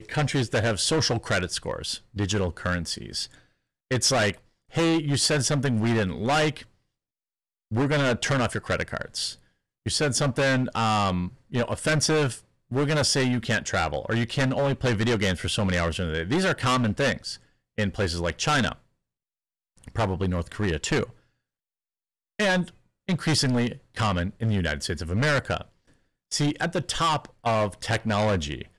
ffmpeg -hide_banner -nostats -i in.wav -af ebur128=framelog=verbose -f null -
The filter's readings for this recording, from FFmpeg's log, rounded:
Integrated loudness:
  I:         -25.3 LUFS
  Threshold: -35.8 LUFS
Loudness range:
  LRA:         4.1 LU
  Threshold: -46.2 LUFS
  LRA low:   -28.6 LUFS
  LRA high:  -24.5 LUFS